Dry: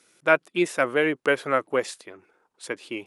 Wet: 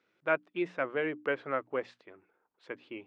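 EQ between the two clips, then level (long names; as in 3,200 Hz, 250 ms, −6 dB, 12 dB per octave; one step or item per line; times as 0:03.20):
low-pass filter 3,100 Hz 12 dB per octave
high-frequency loss of the air 100 metres
mains-hum notches 60/120/180/240/300 Hz
−9.0 dB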